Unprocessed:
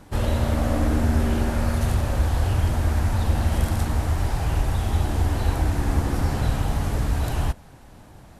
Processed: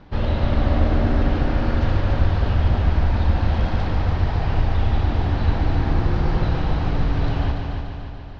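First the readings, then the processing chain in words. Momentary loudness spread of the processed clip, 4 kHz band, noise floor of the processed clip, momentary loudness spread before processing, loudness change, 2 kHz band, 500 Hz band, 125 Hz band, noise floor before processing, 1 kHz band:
4 LU, +1.0 dB, -32 dBFS, 3 LU, +2.0 dB, +2.0 dB, +2.5 dB, +2.0 dB, -47 dBFS, +2.0 dB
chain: octaver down 2 oct, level -2 dB; inverse Chebyshev low-pass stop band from 8300 Hz, stop band 40 dB; multi-head echo 0.145 s, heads first and second, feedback 61%, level -8 dB

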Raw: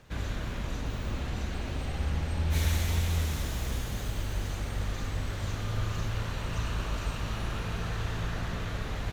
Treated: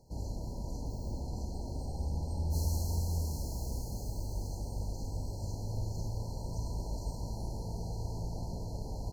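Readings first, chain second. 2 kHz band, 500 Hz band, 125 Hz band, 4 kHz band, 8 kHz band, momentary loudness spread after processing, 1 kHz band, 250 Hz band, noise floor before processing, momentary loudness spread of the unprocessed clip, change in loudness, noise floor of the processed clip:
under -40 dB, -4.5 dB, -4.5 dB, -11.5 dB, -4.5 dB, 7 LU, -8.0 dB, -4.5 dB, -36 dBFS, 7 LU, -5.0 dB, -41 dBFS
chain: FFT band-reject 1000–4100 Hz; gain -4.5 dB

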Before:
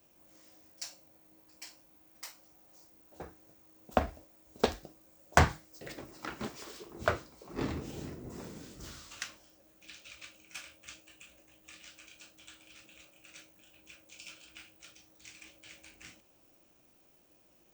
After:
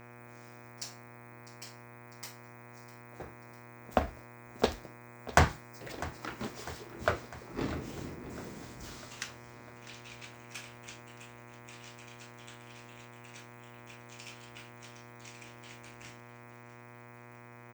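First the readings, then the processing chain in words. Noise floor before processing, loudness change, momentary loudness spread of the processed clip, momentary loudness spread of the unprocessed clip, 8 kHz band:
-65 dBFS, -1.5 dB, 18 LU, 22 LU, 0.0 dB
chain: buzz 120 Hz, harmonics 21, -52 dBFS -3 dB/oct; feedback echo 0.651 s, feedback 59%, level -17 dB

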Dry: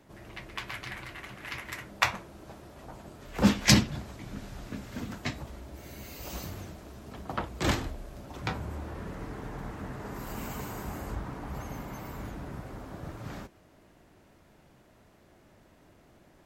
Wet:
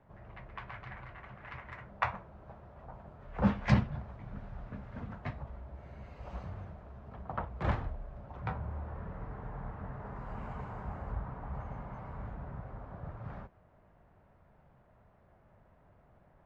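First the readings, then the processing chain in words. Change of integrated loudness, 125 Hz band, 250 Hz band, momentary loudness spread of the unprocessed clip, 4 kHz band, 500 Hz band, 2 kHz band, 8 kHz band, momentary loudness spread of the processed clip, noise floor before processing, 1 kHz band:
-6.0 dB, -2.0 dB, -6.5 dB, 17 LU, -20.5 dB, -5.0 dB, -9.0 dB, under -30 dB, 16 LU, -60 dBFS, -3.0 dB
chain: LPF 1200 Hz 12 dB/oct; bell 310 Hz -13.5 dB 1 oct

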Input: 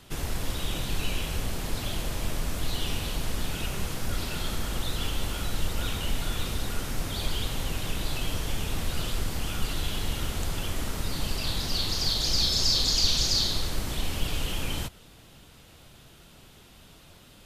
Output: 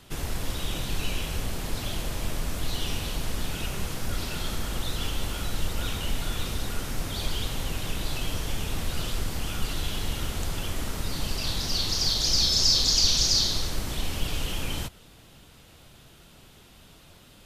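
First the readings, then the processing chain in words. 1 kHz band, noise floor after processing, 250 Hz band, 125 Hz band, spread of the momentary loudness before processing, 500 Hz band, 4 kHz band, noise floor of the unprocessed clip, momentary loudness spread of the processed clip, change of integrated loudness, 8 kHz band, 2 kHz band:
0.0 dB, -53 dBFS, 0.0 dB, 0.0 dB, 10 LU, 0.0 dB, +2.0 dB, -53 dBFS, 13 LU, +1.5 dB, +3.0 dB, 0.0 dB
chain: dynamic EQ 5700 Hz, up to +7 dB, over -45 dBFS, Q 3.4

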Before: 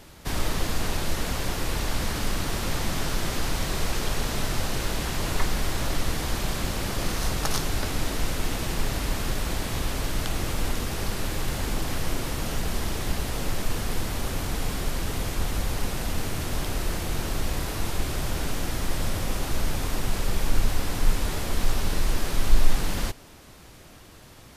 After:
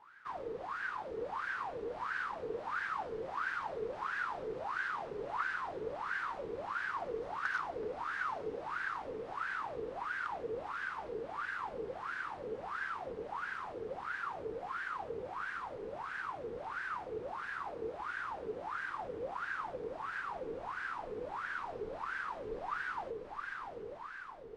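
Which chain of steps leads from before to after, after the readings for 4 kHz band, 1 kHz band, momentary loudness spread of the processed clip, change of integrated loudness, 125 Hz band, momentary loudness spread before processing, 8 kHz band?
-23.0 dB, -3.0 dB, 5 LU, -10.5 dB, -28.0 dB, 2 LU, under -30 dB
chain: fifteen-band EQ 250 Hz -3 dB, 630 Hz -9 dB, 10000 Hz +10 dB; on a send: diffused feedback echo 0.863 s, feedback 52%, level -3 dB; on the sum: wah 1.5 Hz 440–1600 Hz, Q 14; air absorption 100 m; gain +9.5 dB

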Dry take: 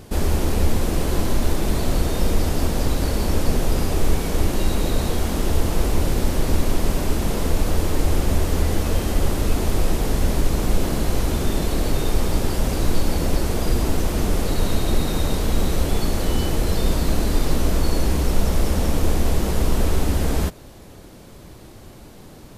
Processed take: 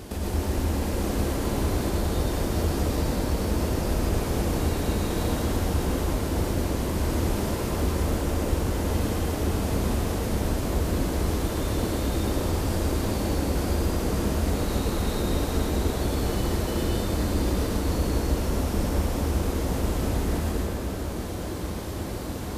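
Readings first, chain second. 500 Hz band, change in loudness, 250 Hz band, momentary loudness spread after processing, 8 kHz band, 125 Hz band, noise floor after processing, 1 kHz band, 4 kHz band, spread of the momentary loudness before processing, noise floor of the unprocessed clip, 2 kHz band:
-2.5 dB, -4.0 dB, -2.0 dB, 2 LU, -4.5 dB, -3.0 dB, -31 dBFS, -2.5 dB, -5.0 dB, 1 LU, -43 dBFS, -3.5 dB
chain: octaver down 1 oct, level +1 dB; HPF 53 Hz; bell 140 Hz -7 dB 0.57 oct; compressor, threshold -34 dBFS, peak gain reduction 18 dB; plate-style reverb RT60 4.7 s, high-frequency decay 0.55×, pre-delay 85 ms, DRR -7 dB; gain +2.5 dB

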